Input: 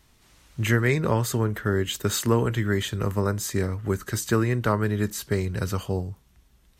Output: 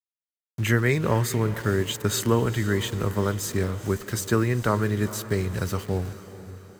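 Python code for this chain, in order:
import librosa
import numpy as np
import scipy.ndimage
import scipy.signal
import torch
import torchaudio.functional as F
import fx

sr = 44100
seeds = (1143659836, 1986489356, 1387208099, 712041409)

y = np.where(np.abs(x) >= 10.0 ** (-37.0 / 20.0), x, 0.0)
y = fx.echo_diffused(y, sr, ms=454, feedback_pct=50, wet_db=-14.5)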